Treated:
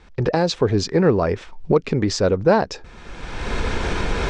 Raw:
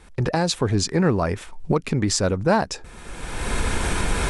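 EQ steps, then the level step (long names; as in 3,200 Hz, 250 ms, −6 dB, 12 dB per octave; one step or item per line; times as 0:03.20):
low-pass filter 5,900 Hz 24 dB per octave
dynamic equaliser 450 Hz, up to +7 dB, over −35 dBFS, Q 1.6
0.0 dB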